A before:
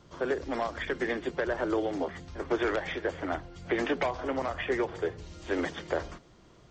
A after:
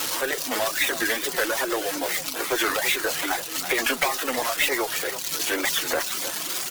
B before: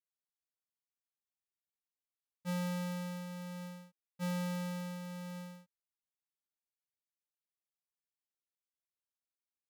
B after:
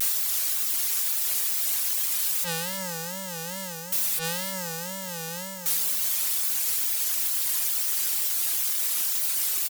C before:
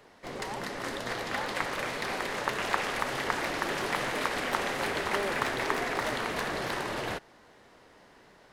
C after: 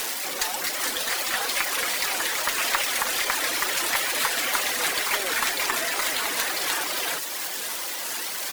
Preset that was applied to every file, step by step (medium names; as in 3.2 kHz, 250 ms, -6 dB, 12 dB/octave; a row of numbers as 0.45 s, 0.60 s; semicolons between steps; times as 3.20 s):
jump at every zero crossing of -30 dBFS; reverb removal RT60 1 s; high-pass 160 Hz 24 dB/octave; tilt EQ +4 dB/octave; comb of notches 210 Hz; Chebyshev shaper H 8 -29 dB, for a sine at -8 dBFS; on a send: feedback delay 326 ms, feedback 27%, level -11 dB; on the sum: wow and flutter 140 cents; normalise loudness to -24 LUFS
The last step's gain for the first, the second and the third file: +5.5 dB, +6.0 dB, +2.5 dB